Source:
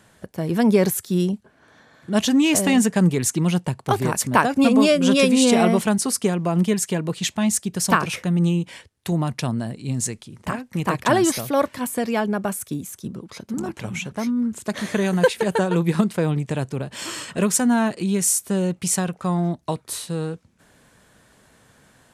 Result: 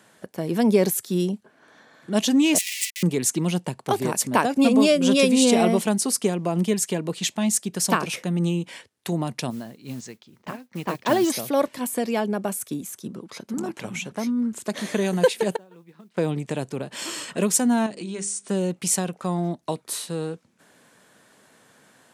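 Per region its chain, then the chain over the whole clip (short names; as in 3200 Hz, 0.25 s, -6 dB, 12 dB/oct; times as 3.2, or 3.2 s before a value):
2.58–3.03 Schmitt trigger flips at -26 dBFS + rippled Chebyshev high-pass 1900 Hz, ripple 3 dB + comb 4.5 ms, depth 46%
9.5–11.3 LPF 5900 Hz 24 dB/oct + modulation noise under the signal 23 dB + upward expander, over -31 dBFS
15.56–16.17 LPF 4800 Hz + modulation noise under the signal 28 dB + flipped gate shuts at -16 dBFS, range -27 dB
17.86–18.49 notches 50/100/150/200/250/300/350/400 Hz + compressor 2:1, threshold -31 dBFS + brick-wall FIR low-pass 9800 Hz
whole clip: HPF 200 Hz 12 dB/oct; dynamic EQ 1400 Hz, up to -6 dB, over -38 dBFS, Q 1.1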